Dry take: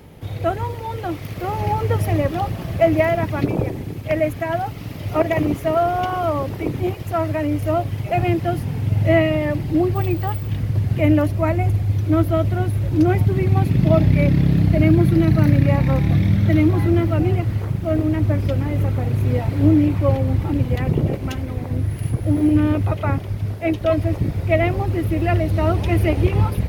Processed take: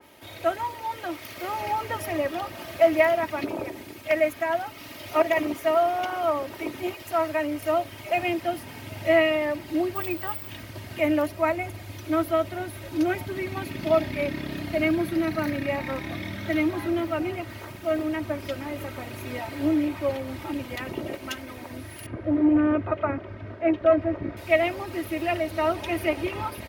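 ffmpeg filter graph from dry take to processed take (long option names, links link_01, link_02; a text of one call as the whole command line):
ffmpeg -i in.wav -filter_complex "[0:a]asettb=1/sr,asplit=3[link_01][link_02][link_03];[link_01]atrim=end=22.064[link_04];[link_02]atrim=start=22.06:end=24.37,asetpts=PTS-STARTPTS,afade=type=in:duration=0.004:curve=qsin,afade=type=out:start_time=2.306:duration=0.004:curve=qsin,equalizer=frequency=850:width_type=o:width=0.61:gain=-7,acontrast=43,lowpass=1400[link_05];[link_03]atrim=start=24.366[link_06];[link_04][link_05]acrossfade=duration=0.004:curve1=hsin:curve2=qsin[link_07];[link_07][link_06]acrossfade=duration=0.004:curve1=qsin:curve2=hsin,highpass=frequency=1100:poles=1,aecho=1:1:3.2:0.58,adynamicequalizer=threshold=0.0112:dfrequency=2300:dqfactor=0.7:tfrequency=2300:tqfactor=0.7:attack=5:release=100:ratio=0.375:range=2:mode=cutabove:tftype=highshelf" out.wav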